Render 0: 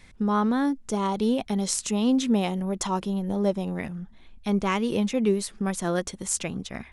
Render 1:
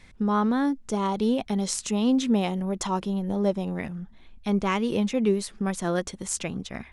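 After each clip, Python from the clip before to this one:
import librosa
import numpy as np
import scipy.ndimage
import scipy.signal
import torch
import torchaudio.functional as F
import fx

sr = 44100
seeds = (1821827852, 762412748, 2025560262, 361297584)

y = fx.high_shelf(x, sr, hz=10000.0, db=-7.5)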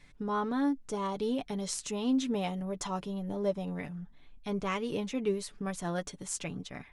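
y = x + 0.53 * np.pad(x, (int(6.9 * sr / 1000.0), 0))[:len(x)]
y = y * 10.0 ** (-7.5 / 20.0)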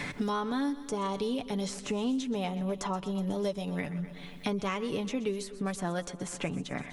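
y = fx.echo_feedback(x, sr, ms=123, feedback_pct=54, wet_db=-17.0)
y = fx.band_squash(y, sr, depth_pct=100)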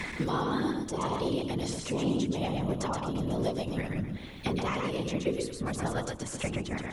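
y = fx.whisperise(x, sr, seeds[0])
y = y + 10.0 ** (-4.0 / 20.0) * np.pad(y, (int(125 * sr / 1000.0), 0))[:len(y)]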